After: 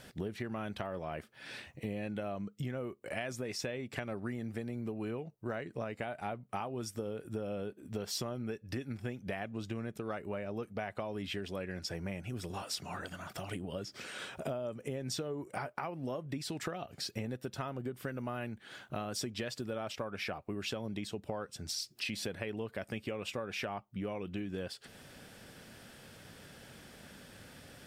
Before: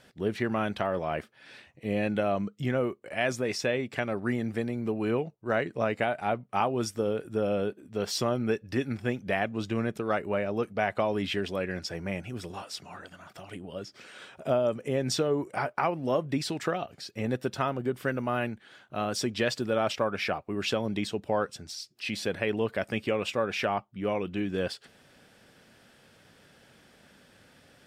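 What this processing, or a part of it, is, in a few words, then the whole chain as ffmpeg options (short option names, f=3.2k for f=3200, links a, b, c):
ASMR close-microphone chain: -af "lowshelf=f=160:g=6,acompressor=threshold=-39dB:ratio=8,highshelf=f=8.4k:g=8,volume=3dB"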